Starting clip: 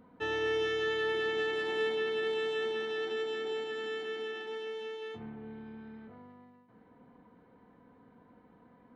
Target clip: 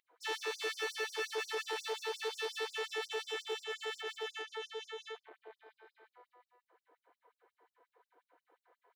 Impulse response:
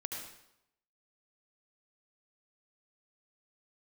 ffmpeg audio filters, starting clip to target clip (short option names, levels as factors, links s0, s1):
-af "volume=37.6,asoftclip=hard,volume=0.0266,aeval=exprs='0.0282*(cos(1*acos(clip(val(0)/0.0282,-1,1)))-cos(1*PI/2))+0.01*(cos(2*acos(clip(val(0)/0.0282,-1,1)))-cos(2*PI/2))+0.00126*(cos(7*acos(clip(val(0)/0.0282,-1,1)))-cos(7*PI/2))':c=same,afftfilt=real='re*gte(b*sr/1024,300*pow(5000/300,0.5+0.5*sin(2*PI*5.6*pts/sr)))':imag='im*gte(b*sr/1024,300*pow(5000/300,0.5+0.5*sin(2*PI*5.6*pts/sr)))':win_size=1024:overlap=0.75"